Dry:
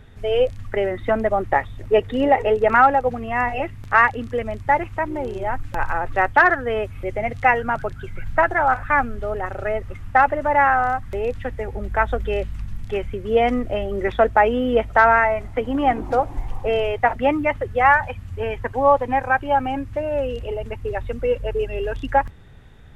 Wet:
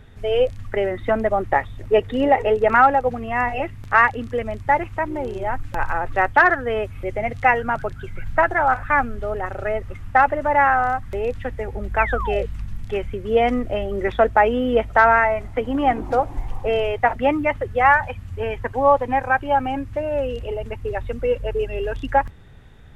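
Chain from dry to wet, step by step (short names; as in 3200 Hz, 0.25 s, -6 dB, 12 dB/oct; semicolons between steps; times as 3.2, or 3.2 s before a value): painted sound fall, 11.98–12.46, 430–2800 Hz -28 dBFS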